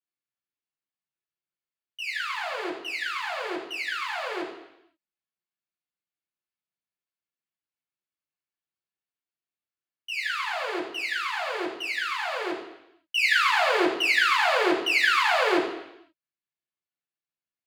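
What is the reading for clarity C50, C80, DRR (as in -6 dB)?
5.5 dB, 8.5 dB, -6.5 dB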